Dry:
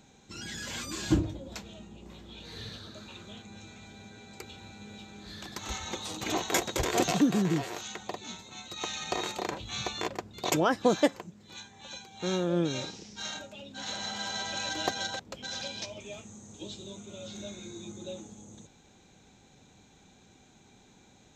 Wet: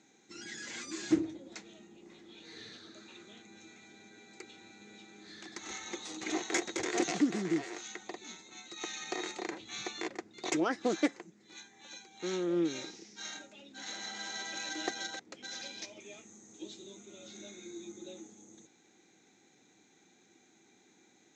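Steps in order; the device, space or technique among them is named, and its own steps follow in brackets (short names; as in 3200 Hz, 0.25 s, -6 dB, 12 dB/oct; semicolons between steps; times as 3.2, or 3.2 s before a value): full-range speaker at full volume (Doppler distortion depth 0.25 ms; speaker cabinet 250–8000 Hz, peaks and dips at 330 Hz +8 dB, 580 Hz -6 dB, 1000 Hz -5 dB, 2000 Hz +7 dB, 3000 Hz -4 dB, 6400 Hz +4 dB); gain -5.5 dB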